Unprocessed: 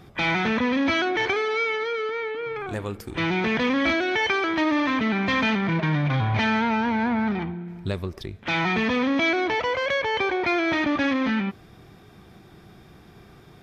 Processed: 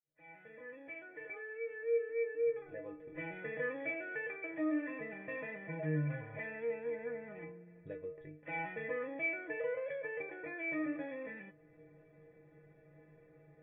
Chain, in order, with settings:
fade in at the beginning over 3.50 s
in parallel at 0 dB: downward compressor, threshold −35 dBFS, peak gain reduction 15 dB
on the sum: formant resonators in series e
high-frequency loss of the air 250 metres
stiff-string resonator 150 Hz, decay 0.37 s, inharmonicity 0.008
level +10.5 dB

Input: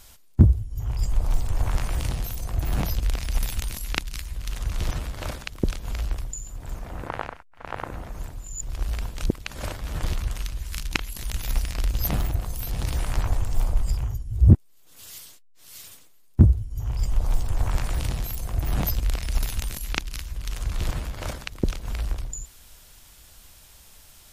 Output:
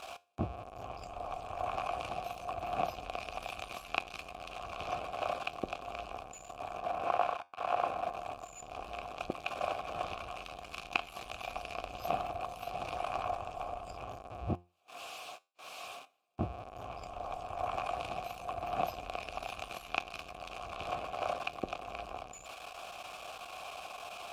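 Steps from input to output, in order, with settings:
converter with a step at zero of −28 dBFS
formant filter a
tuned comb filter 88 Hz, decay 0.3 s, harmonics all, mix 40%
level +10.5 dB

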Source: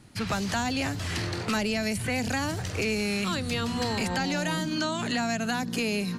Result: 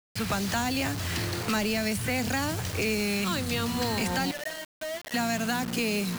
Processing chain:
0:04.31–0:05.14: pair of resonant band-passes 1,100 Hz, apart 1.5 octaves
bit-depth reduction 6 bits, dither none

